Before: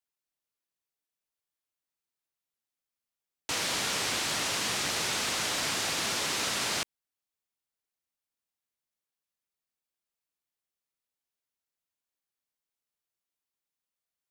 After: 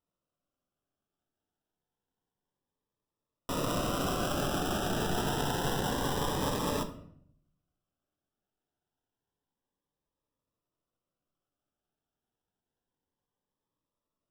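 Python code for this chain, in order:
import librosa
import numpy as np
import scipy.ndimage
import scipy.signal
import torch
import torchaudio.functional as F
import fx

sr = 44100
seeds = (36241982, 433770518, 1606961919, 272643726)

y = fx.sample_hold(x, sr, seeds[0], rate_hz=2200.0, jitter_pct=0)
y = fx.room_shoebox(y, sr, seeds[1], volume_m3=120.0, walls='mixed', distance_m=0.38)
y = fx.notch_cascade(y, sr, direction='rising', hz=0.28)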